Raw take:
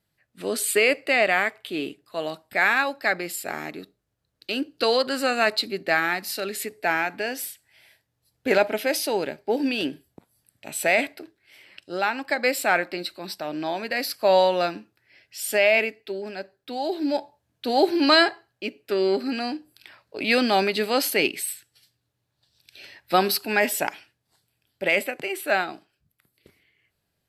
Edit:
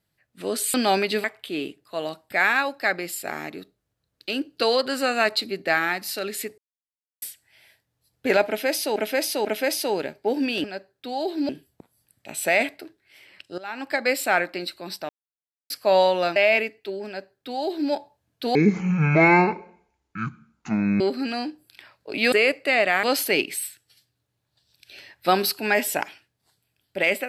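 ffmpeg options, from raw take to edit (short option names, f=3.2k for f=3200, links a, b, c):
-filter_complex "[0:a]asplit=17[a][b][c][d][e][f][g][h][i][j][k][l][m][n][o][p][q];[a]atrim=end=0.742[r];[b]atrim=start=20.388:end=20.892[s];[c]atrim=start=1.448:end=6.79,asetpts=PTS-STARTPTS,afade=t=out:st=5.338:d=0.004:c=hsin[t];[d]atrim=start=6.79:end=7.43,asetpts=PTS-STARTPTS,volume=0[u];[e]atrim=start=7.43:end=9.172,asetpts=PTS-STARTPTS,afade=t=in:d=0.004:c=hsin[v];[f]atrim=start=8.678:end=9.172[w];[g]atrim=start=8.678:end=9.872[x];[h]atrim=start=16.278:end=17.132[y];[i]atrim=start=9.868:end=11.96,asetpts=PTS-STARTPTS,afade=t=out:st=2.088:d=0.004:c=hsin:silence=0.158489[z];[j]atrim=start=11.96:end=13.47,asetpts=PTS-STARTPTS,afade=t=in:d=0.25:c=qua:silence=0.158489,afade=t=out:st=1.506:d=0.004:c=hsin[aa];[k]atrim=start=13.47:end=14.08,asetpts=PTS-STARTPTS,volume=0[ab];[l]atrim=start=14.08:end=14.742,asetpts=PTS-STARTPTS,afade=t=in:d=0.004:c=hsin[ac];[m]atrim=start=15.578:end=17.774[ad];[n]atrim=start=17.77:end=19.07,asetpts=PTS-STARTPTS,asetrate=23373,aresample=44100[ae];[o]atrim=start=19.066:end=20.392[af];[p]atrim=start=0.738:end=1.452[ag];[q]atrim=start=20.888[ah];[r][s]acrossfade=d=0.004:c1=hsin:c2=hsin[ai];[t][u][v]concat=n=3:v=0:a=1[aj];[ai][aj]acrossfade=d=0.004:c1=hsin:c2=hsin[ak];[ak][w]acrossfade=d=0.004:c1=hsin:c2=hsin[al];[al][x]acrossfade=d=0.004:c1=hsin:c2=hsin[am];[am][y]acrossfade=d=0.004:c1=hsin:c2=hsin[an];[z][aa][ab][ac]concat=n=4:v=0:a=1[ao];[an][ao]acrossfade=d=0.004:c1=hsin:c2=hsin[ap];[ap][ad]acrossfade=d=0.004:c1=hsin:c2=hsin[aq];[aq][ae]acrossfade=d=0.004:c1=hsin:c2=hsin[ar];[ar][af]acrossfade=d=0.004:c1=hsin:c2=hsin[as];[as][ag]acrossfade=d=0.004:c1=hsin:c2=hsin[at];[at][ah]acrossfade=d=0.004:c1=hsin:c2=hsin"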